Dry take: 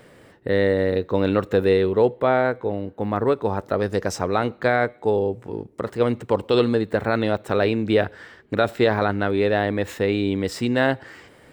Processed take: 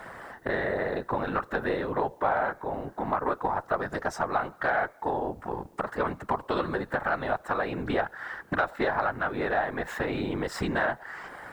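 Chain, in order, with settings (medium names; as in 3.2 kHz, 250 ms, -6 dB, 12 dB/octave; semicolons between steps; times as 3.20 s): high-order bell 1.1 kHz +13.5 dB; compression 3:1, threshold -29 dBFS, peak gain reduction 18 dB; whisper effect; Chebyshev shaper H 4 -27 dB, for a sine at -12.5 dBFS; word length cut 12-bit, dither triangular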